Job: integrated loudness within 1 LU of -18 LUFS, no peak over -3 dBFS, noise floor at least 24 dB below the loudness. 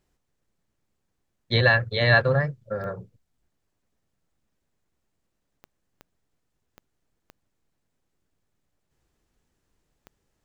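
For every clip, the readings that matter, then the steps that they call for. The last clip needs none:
clicks found 6; loudness -22.0 LUFS; peak level -5.5 dBFS; loudness target -18.0 LUFS
-> de-click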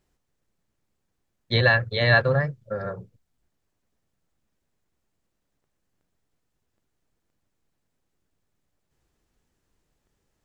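clicks found 0; loudness -21.5 LUFS; peak level -5.5 dBFS; loudness target -18.0 LUFS
-> trim +3.5 dB; peak limiter -3 dBFS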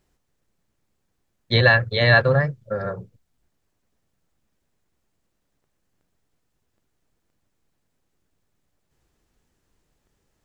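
loudness -18.5 LUFS; peak level -3.0 dBFS; noise floor -74 dBFS

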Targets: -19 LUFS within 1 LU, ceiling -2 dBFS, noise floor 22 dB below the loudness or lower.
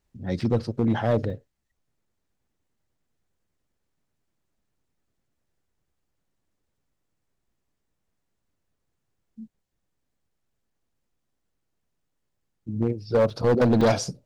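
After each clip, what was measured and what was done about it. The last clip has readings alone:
clipped samples 0.8%; clipping level -15.0 dBFS; dropouts 4; longest dropout 3.2 ms; loudness -24.0 LUFS; peak level -15.0 dBFS; loudness target -19.0 LUFS
-> clip repair -15 dBFS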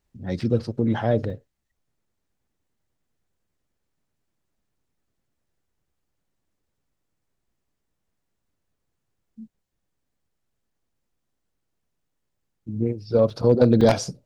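clipped samples 0.0%; dropouts 4; longest dropout 3.2 ms
-> interpolate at 0.41/1.30/13.30/13.81 s, 3.2 ms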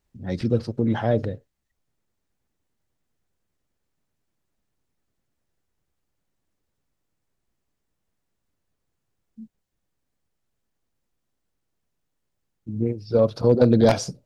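dropouts 0; loudness -21.5 LUFS; peak level -6.0 dBFS; loudness target -19.0 LUFS
-> trim +2.5 dB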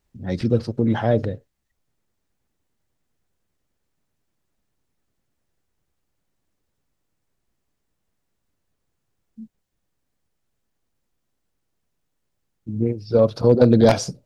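loudness -19.0 LUFS; peak level -3.5 dBFS; noise floor -76 dBFS

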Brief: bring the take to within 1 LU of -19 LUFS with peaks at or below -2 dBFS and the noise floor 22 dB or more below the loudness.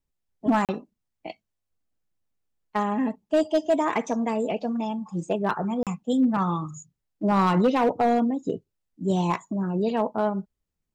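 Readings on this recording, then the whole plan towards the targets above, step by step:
clipped samples 0.6%; clipping level -14.5 dBFS; dropouts 2; longest dropout 37 ms; loudness -25.5 LUFS; peak level -14.5 dBFS; loudness target -19.0 LUFS
-> clip repair -14.5 dBFS; interpolate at 0.65/5.83 s, 37 ms; trim +6.5 dB

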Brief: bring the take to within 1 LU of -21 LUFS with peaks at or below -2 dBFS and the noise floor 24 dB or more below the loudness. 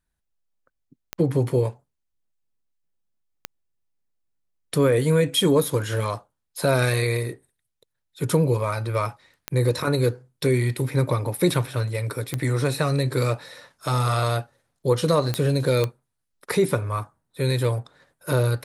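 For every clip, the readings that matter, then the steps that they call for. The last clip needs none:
clicks found 6; loudness -23.5 LUFS; peak level -8.5 dBFS; loudness target -21.0 LUFS
-> de-click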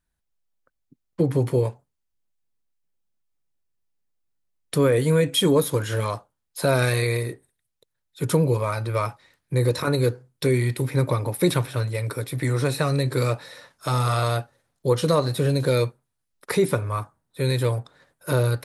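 clicks found 0; loudness -23.5 LUFS; peak level -8.5 dBFS; loudness target -21.0 LUFS
-> trim +2.5 dB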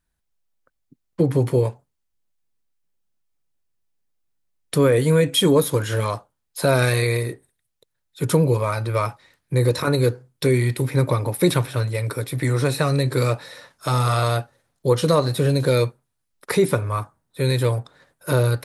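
loudness -21.0 LUFS; peak level -6.0 dBFS; noise floor -76 dBFS

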